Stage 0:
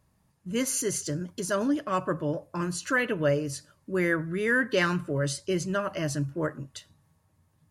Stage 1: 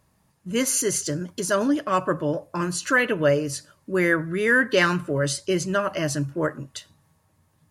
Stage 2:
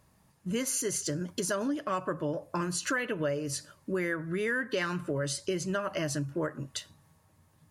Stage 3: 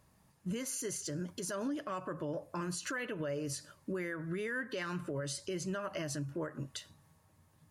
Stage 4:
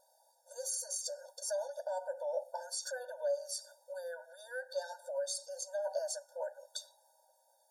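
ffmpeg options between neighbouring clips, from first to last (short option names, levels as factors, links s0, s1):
-af "lowshelf=f=200:g=-5.5,volume=2"
-af "acompressor=threshold=0.0355:ratio=5"
-af "alimiter=level_in=1.41:limit=0.0631:level=0:latency=1:release=104,volume=0.708,volume=0.75"
-af "asuperstop=centerf=2300:order=8:qfactor=0.96,afftfilt=real='re*eq(mod(floor(b*sr/1024/480),2),1)':imag='im*eq(mod(floor(b*sr/1024/480),2),1)':win_size=1024:overlap=0.75,volume=2"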